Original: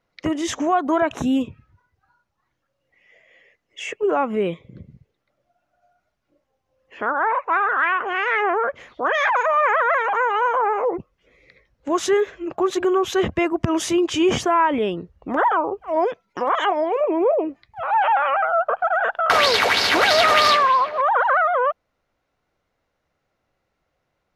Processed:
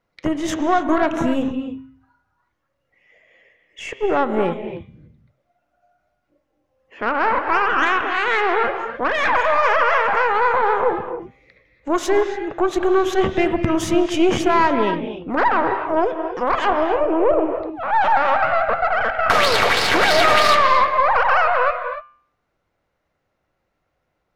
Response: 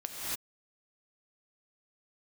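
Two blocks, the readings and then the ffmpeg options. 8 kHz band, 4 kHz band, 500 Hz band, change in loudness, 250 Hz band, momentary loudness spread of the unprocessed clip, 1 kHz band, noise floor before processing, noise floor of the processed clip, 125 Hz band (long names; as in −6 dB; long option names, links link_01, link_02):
−1.0 dB, −1.0 dB, +2.0 dB, +1.5 dB, +2.5 dB, 10 LU, +1.5 dB, −75 dBFS, −73 dBFS, +3.0 dB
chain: -filter_complex "[0:a]aeval=exprs='0.668*(cos(1*acos(clip(val(0)/0.668,-1,1)))-cos(1*PI/2))+0.0531*(cos(4*acos(clip(val(0)/0.668,-1,1)))-cos(4*PI/2))+0.0335*(cos(8*acos(clip(val(0)/0.668,-1,1)))-cos(8*PI/2))':channel_layout=same,bandreject=frequency=132.4:width_type=h:width=4,bandreject=frequency=264.8:width_type=h:width=4,bandreject=frequency=397.2:width_type=h:width=4,bandreject=frequency=529.6:width_type=h:width=4,bandreject=frequency=662:width_type=h:width=4,bandreject=frequency=794.4:width_type=h:width=4,bandreject=frequency=926.8:width_type=h:width=4,bandreject=frequency=1059.2:width_type=h:width=4,bandreject=frequency=1191.6:width_type=h:width=4,bandreject=frequency=1324:width_type=h:width=4,bandreject=frequency=1456.4:width_type=h:width=4,bandreject=frequency=1588.8:width_type=h:width=4,bandreject=frequency=1721.2:width_type=h:width=4,bandreject=frequency=1853.6:width_type=h:width=4,bandreject=frequency=1986:width_type=h:width=4,bandreject=frequency=2118.4:width_type=h:width=4,bandreject=frequency=2250.8:width_type=h:width=4,bandreject=frequency=2383.2:width_type=h:width=4,bandreject=frequency=2515.6:width_type=h:width=4,bandreject=frequency=2648:width_type=h:width=4,bandreject=frequency=2780.4:width_type=h:width=4,bandreject=frequency=2912.8:width_type=h:width=4,bandreject=frequency=3045.2:width_type=h:width=4,bandreject=frequency=3177.6:width_type=h:width=4,bandreject=frequency=3310:width_type=h:width=4,bandreject=frequency=3442.4:width_type=h:width=4,bandreject=frequency=3574.8:width_type=h:width=4,bandreject=frequency=3707.2:width_type=h:width=4,bandreject=frequency=3839.6:width_type=h:width=4,bandreject=frequency=3972:width_type=h:width=4,bandreject=frequency=4104.4:width_type=h:width=4,asplit=2[link_01][link_02];[1:a]atrim=start_sample=2205,lowpass=3200[link_03];[link_02][link_03]afir=irnorm=-1:irlink=0,volume=-6.5dB[link_04];[link_01][link_04]amix=inputs=2:normalize=0,volume=-2dB"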